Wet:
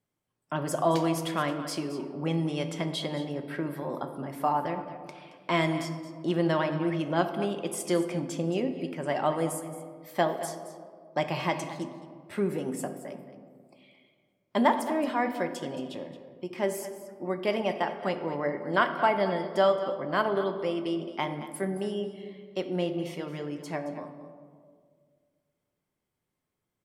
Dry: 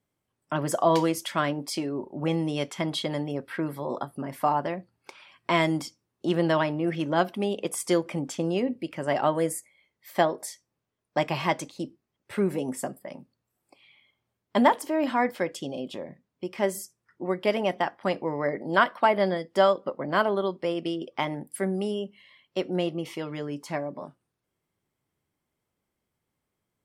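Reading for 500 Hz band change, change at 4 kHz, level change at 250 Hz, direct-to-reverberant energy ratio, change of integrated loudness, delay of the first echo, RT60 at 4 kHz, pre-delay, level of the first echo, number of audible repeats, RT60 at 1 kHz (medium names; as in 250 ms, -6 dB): -2.5 dB, -3.0 dB, -2.0 dB, 6.5 dB, -2.5 dB, 222 ms, 0.95 s, 5 ms, -14.0 dB, 1, 1.7 s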